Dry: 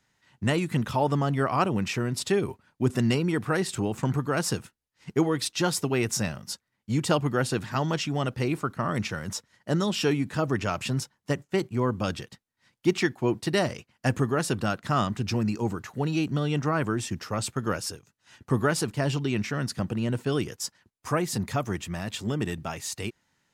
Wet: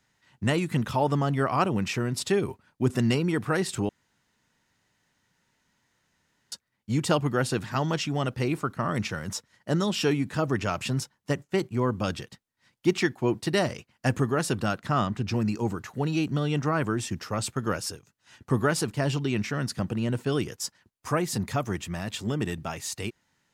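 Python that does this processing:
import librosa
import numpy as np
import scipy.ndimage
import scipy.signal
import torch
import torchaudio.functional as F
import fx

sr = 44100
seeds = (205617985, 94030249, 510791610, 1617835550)

y = fx.high_shelf(x, sr, hz=4800.0, db=-8.0, at=(14.86, 15.34))
y = fx.edit(y, sr, fx.room_tone_fill(start_s=3.89, length_s=2.63), tone=tone)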